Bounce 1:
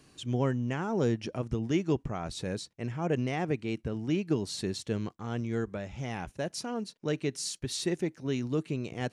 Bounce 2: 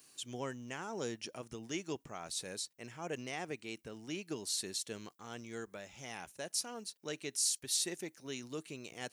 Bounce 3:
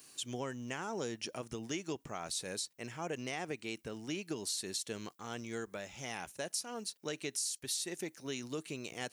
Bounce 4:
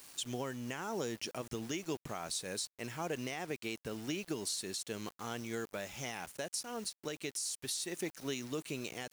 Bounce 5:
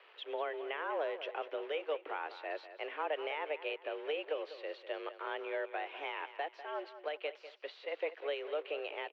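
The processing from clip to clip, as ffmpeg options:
-af "aemphasis=mode=production:type=riaa,volume=-7.5dB"
-af "acompressor=threshold=-39dB:ratio=6,volume=4.5dB"
-af "acrusher=bits=8:mix=0:aa=0.000001,alimiter=level_in=5.5dB:limit=-24dB:level=0:latency=1:release=381,volume=-5.5dB,volume=3dB"
-af "aecho=1:1:197|394|591|788:0.224|0.0806|0.029|0.0104,highpass=f=230:t=q:w=0.5412,highpass=f=230:t=q:w=1.307,lowpass=f=2.9k:t=q:w=0.5176,lowpass=f=2.9k:t=q:w=0.7071,lowpass=f=2.9k:t=q:w=1.932,afreqshift=150,volume=2.5dB"

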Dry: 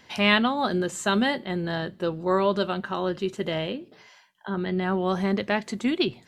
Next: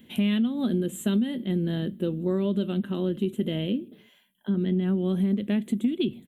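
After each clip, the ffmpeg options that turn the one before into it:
-af "firequalizer=gain_entry='entry(130,0);entry(220,12);entry(320,4);entry(840,-16);entry(3400,0);entry(4900,-25);entry(7500,-5);entry(11000,9)':delay=0.05:min_phase=1,acompressor=threshold=-21dB:ratio=10"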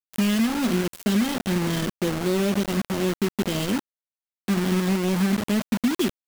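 -af "acrusher=bits=4:mix=0:aa=0.000001,volume=2dB"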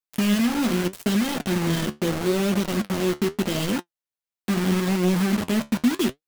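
-af "flanger=delay=5.6:depth=8.2:regen=63:speed=0.79:shape=sinusoidal,volume=5dB"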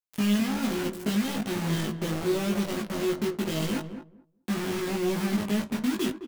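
-filter_complex "[0:a]asplit=2[a][b];[b]adelay=19,volume=-2.5dB[c];[a][c]amix=inputs=2:normalize=0,asplit=2[d][e];[e]adelay=215,lowpass=f=880:p=1,volume=-8.5dB,asplit=2[f][g];[g]adelay=215,lowpass=f=880:p=1,volume=0.17,asplit=2[h][i];[i]adelay=215,lowpass=f=880:p=1,volume=0.17[j];[d][f][h][j]amix=inputs=4:normalize=0,volume=-7dB"

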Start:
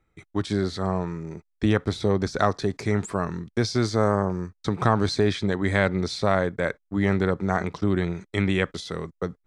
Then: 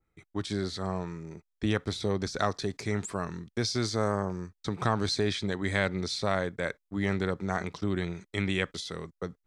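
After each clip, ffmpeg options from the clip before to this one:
-af "adynamicequalizer=threshold=0.0112:dfrequency=2100:dqfactor=0.7:tfrequency=2100:tqfactor=0.7:attack=5:release=100:ratio=0.375:range=3.5:mode=boostabove:tftype=highshelf,volume=-7dB"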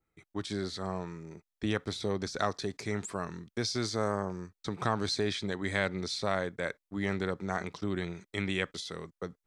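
-af "lowshelf=f=110:g=-6.5,volume=-2dB"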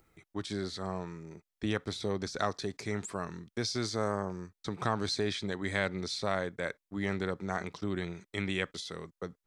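-af "acompressor=mode=upward:threshold=-54dB:ratio=2.5,volume=-1dB"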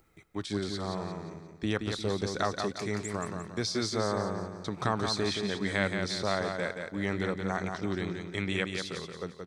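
-af "aecho=1:1:175|350|525|700|875:0.531|0.207|0.0807|0.0315|0.0123,volume=1.5dB"

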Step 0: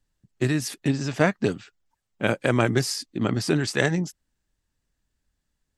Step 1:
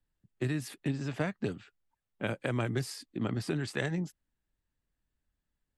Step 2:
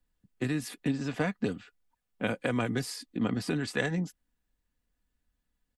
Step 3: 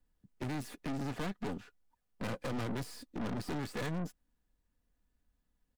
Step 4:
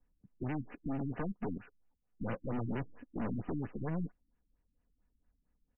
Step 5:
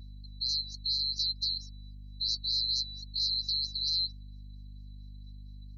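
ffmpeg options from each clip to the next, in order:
-filter_complex "[0:a]highshelf=f=7.9k:g=-5,acrossover=split=150|3000[a][b][c];[b]acompressor=threshold=-24dB:ratio=4[d];[a][d][c]amix=inputs=3:normalize=0,equalizer=f=5.8k:t=o:w=0.79:g=-8.5,volume=-6.5dB"
-af "aecho=1:1:4.1:0.43,volume=2.5dB"
-filter_complex "[0:a]acrossover=split=1300[a][b];[b]aeval=exprs='max(val(0),0)':c=same[c];[a][c]amix=inputs=2:normalize=0,aeval=exprs='(tanh(100*val(0)+0.65)-tanh(0.65))/100':c=same,volume=5dB"
-af "afftfilt=real='re*lt(b*sr/1024,310*pow(3100/310,0.5+0.5*sin(2*PI*4.4*pts/sr)))':imag='im*lt(b*sr/1024,310*pow(3100/310,0.5+0.5*sin(2*PI*4.4*pts/sr)))':win_size=1024:overlap=0.75,volume=1dB"
-af "afftfilt=real='real(if(lt(b,736),b+184*(1-2*mod(floor(b/184),2)),b),0)':imag='imag(if(lt(b,736),b+184*(1-2*mod(floor(b/184),2)),b),0)':win_size=2048:overlap=0.75,aeval=exprs='val(0)+0.00178*(sin(2*PI*50*n/s)+sin(2*PI*2*50*n/s)/2+sin(2*PI*3*50*n/s)/3+sin(2*PI*4*50*n/s)/4+sin(2*PI*5*50*n/s)/5)':c=same,lowshelf=f=96:g=9,volume=4.5dB"

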